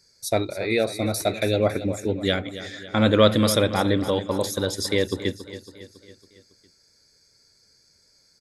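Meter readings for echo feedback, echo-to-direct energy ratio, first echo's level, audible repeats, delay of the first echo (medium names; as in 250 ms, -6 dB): 54%, -12.0 dB, -13.5 dB, 5, 277 ms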